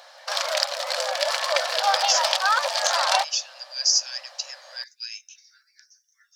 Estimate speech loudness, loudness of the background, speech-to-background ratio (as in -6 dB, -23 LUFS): -26.5 LUFS, -22.5 LUFS, -4.0 dB